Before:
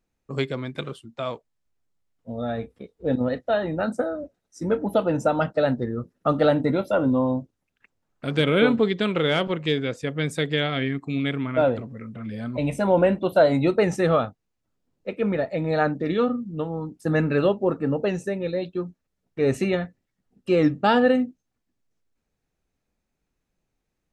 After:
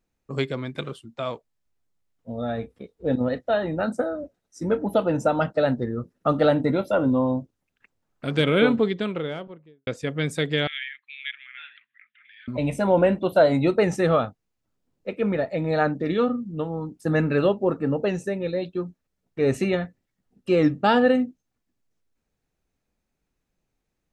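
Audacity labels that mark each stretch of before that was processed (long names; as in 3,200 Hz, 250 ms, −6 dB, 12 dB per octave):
8.580000	9.870000	fade out and dull
10.670000	12.480000	elliptic band-pass filter 1,700–3,500 Hz, stop band 60 dB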